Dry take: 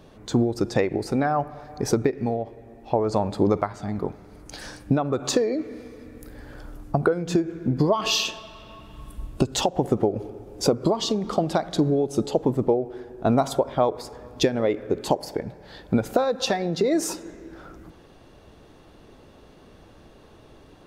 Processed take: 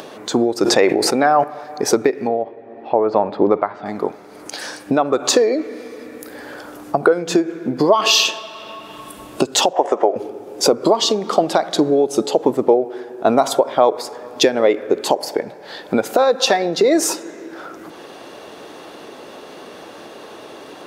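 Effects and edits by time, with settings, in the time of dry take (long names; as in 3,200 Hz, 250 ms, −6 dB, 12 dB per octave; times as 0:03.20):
0:00.56–0:01.44: level that may fall only so fast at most 31 dB per second
0:02.27–0:03.86: high-frequency loss of the air 370 metres
0:09.73–0:10.16: loudspeaker in its box 440–7,300 Hz, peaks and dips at 620 Hz +7 dB, 1,000 Hz +8 dB, 1,800 Hz +5 dB, 4,200 Hz −8 dB
whole clip: high-pass filter 360 Hz 12 dB per octave; upward compression, threshold −38 dBFS; boost into a limiter +11 dB; level −1 dB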